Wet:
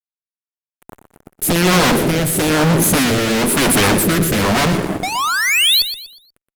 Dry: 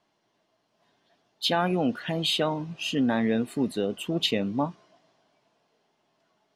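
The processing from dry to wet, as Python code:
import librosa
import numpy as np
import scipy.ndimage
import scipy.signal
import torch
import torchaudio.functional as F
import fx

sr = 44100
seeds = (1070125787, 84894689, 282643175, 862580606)

p1 = scipy.signal.sosfilt(scipy.signal.cheby2(4, 60, [1200.0, 4300.0], 'bandstop', fs=sr, output='sos'), x)
p2 = fx.cheby_harmonics(p1, sr, harmonics=(4, 8), levels_db=(-26, -25), full_scale_db=-15.5)
p3 = fx.fold_sine(p2, sr, drive_db=20, ceiling_db=-16.0)
p4 = p2 + (p3 * 10.0 ** (-5.5 / 20.0))
p5 = fx.spec_paint(p4, sr, seeds[0], shape='rise', start_s=5.03, length_s=0.79, low_hz=710.0, high_hz=4600.0, level_db=-23.0)
p6 = fx.fuzz(p5, sr, gain_db=50.0, gate_db=-48.0)
p7 = fx.rotary(p6, sr, hz=1.0)
p8 = fx.echo_feedback(p7, sr, ms=121, feedback_pct=34, wet_db=-11)
y = p8 * 10.0 ** (1.5 / 20.0)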